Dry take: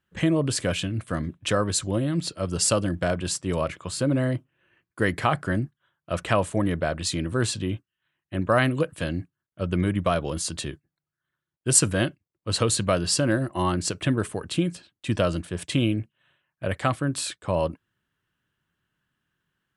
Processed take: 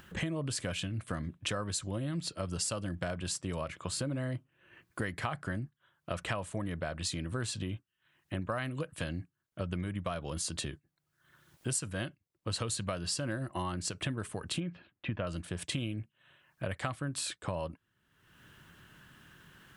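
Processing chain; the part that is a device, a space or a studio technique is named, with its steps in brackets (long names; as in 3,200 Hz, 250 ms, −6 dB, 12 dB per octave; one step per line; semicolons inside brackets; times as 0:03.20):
0:14.60–0:15.27: low-pass filter 2,600 Hz 24 dB per octave
dynamic equaliser 370 Hz, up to −5 dB, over −36 dBFS, Q 1
upward and downward compression (upward compression, threshold −39 dBFS; downward compressor 5 to 1, threshold −33 dBFS, peak gain reduction 18 dB)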